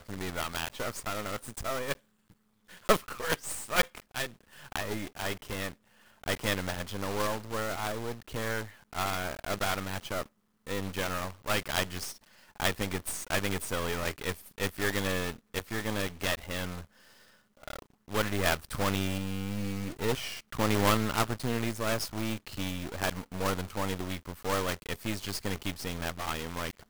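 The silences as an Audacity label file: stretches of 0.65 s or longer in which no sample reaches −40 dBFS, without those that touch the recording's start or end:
1.940000	2.710000	silence
16.820000	17.630000	silence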